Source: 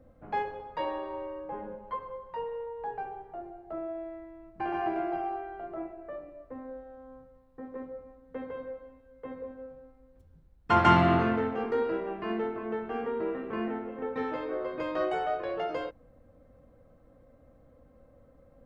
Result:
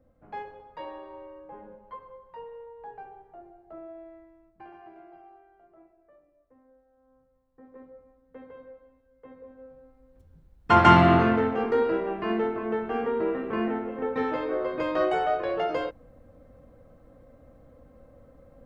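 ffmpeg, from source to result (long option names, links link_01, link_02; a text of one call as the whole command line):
ffmpeg -i in.wav -af "volume=17dB,afade=type=out:start_time=4.18:duration=0.6:silence=0.251189,afade=type=in:start_time=6.91:duration=0.95:silence=0.281838,afade=type=in:start_time=9.41:duration=1.31:silence=0.237137" out.wav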